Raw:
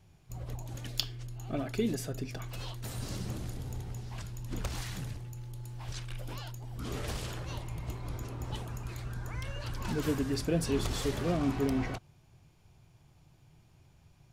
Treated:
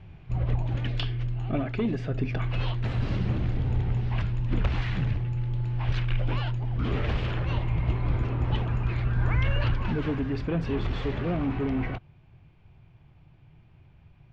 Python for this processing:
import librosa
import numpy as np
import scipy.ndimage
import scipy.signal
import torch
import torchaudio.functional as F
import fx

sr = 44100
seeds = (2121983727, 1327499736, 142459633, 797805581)

p1 = fx.fold_sine(x, sr, drive_db=15, ceiling_db=-9.0)
p2 = x + F.gain(torch.from_numpy(p1), -9.0).numpy()
p3 = fx.rider(p2, sr, range_db=4, speed_s=0.5)
p4 = fx.ladder_lowpass(p3, sr, hz=3300.0, resonance_pct=30)
p5 = fx.low_shelf(p4, sr, hz=230.0, db=6.0)
y = fx.env_flatten(p5, sr, amount_pct=50, at=(9.17, 9.74), fade=0.02)